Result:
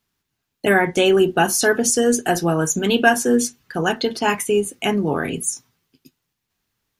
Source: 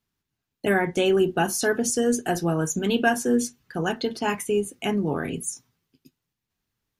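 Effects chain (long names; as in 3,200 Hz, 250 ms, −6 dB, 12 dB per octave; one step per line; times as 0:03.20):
low-shelf EQ 370 Hz −5 dB
level +7.5 dB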